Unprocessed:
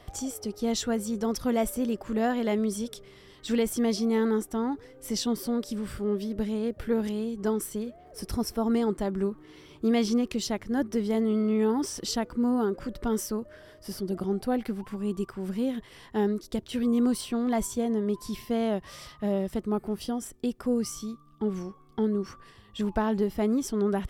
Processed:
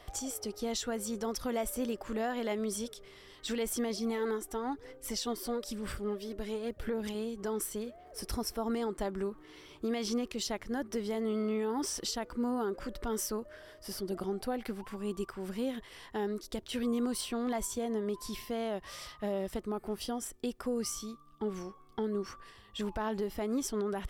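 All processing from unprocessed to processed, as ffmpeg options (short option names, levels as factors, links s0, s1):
-filter_complex "[0:a]asettb=1/sr,asplit=3[s0][s1][s2];[s0]atrim=end=3.904[s3];[s1]atrim=start=3.9:end=7.15,asetpts=PTS-STARTPTS,afade=t=in:d=0.004:c=qsin,afade=t=out:st=3.246:d=0.004:c=qsin,aphaser=in_gain=1:out_gain=1:delay=2.9:decay=0.42:speed=1:type=sinusoidal,tremolo=f=5:d=0.4[s4];[s2]atrim=start=7.146[s5];[s3][s4]acrossfade=d=0.004:c1=hsin:c2=qsin[s6];[s6][s5]acrossfade=d=0.004:c1=qsin:c2=hsin,equalizer=f=150:w=0.56:g=-9,alimiter=level_in=1.12:limit=0.0631:level=0:latency=1:release=107,volume=0.891"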